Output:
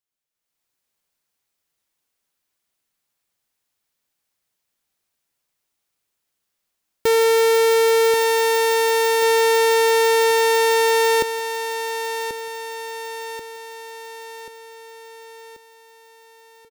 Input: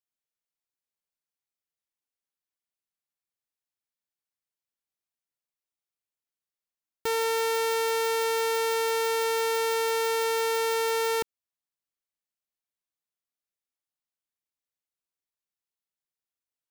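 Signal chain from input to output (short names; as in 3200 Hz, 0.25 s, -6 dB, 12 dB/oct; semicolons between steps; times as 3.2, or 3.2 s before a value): AGC gain up to 11 dB; hard clip -17.5 dBFS, distortion -11 dB; feedback echo 1.085 s, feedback 54%, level -9 dB; gain +3.5 dB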